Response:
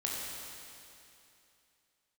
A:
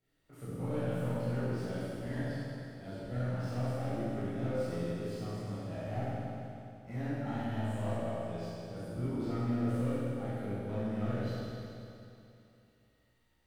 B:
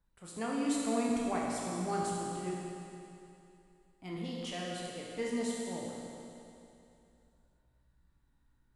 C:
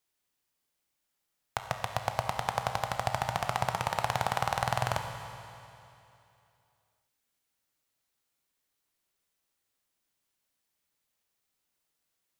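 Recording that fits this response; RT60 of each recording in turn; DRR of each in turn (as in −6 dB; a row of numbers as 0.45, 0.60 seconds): B; 2.8, 2.8, 2.8 seconds; −13.0, −4.0, 5.0 decibels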